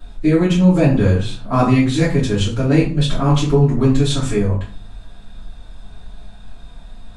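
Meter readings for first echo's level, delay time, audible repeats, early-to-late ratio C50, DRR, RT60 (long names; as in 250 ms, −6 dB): no echo audible, no echo audible, no echo audible, 6.5 dB, −9.5 dB, 0.45 s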